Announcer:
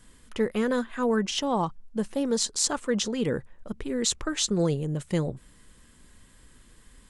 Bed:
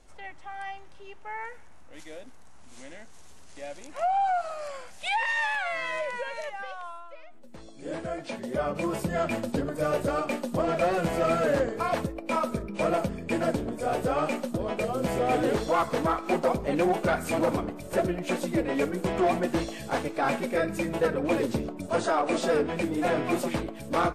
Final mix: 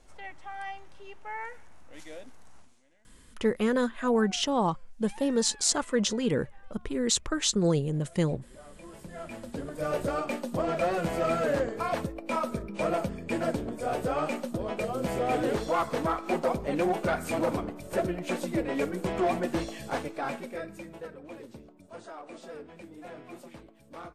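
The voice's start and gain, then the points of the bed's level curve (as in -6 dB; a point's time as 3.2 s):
3.05 s, 0.0 dB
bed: 2.59 s -1 dB
2.81 s -23 dB
8.56 s -23 dB
9.97 s -2.5 dB
19.9 s -2.5 dB
21.23 s -18.5 dB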